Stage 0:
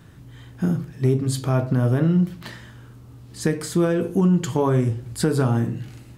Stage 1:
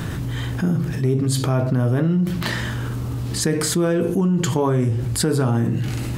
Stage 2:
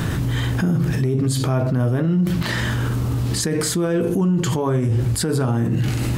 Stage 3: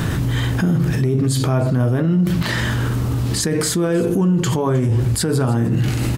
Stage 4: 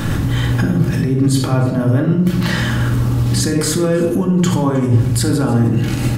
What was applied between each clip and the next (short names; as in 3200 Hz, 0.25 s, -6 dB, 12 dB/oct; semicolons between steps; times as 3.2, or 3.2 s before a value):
fast leveller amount 70%; gain -2 dB
limiter -17 dBFS, peak gain reduction 8.5 dB; gain +4.5 dB
echo 0.312 s -21 dB; gain +2 dB
shoebox room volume 2100 m³, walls furnished, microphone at 2.3 m